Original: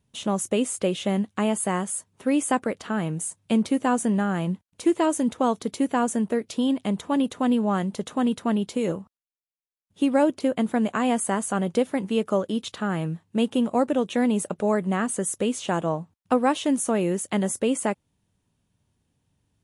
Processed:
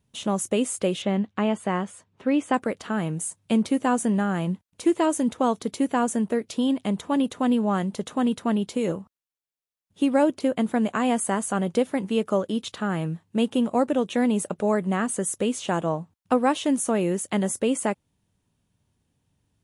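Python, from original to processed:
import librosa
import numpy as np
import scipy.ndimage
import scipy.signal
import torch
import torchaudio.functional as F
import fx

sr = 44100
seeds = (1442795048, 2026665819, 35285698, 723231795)

y = fx.lowpass(x, sr, hz=3900.0, slope=12, at=(1.02, 2.54))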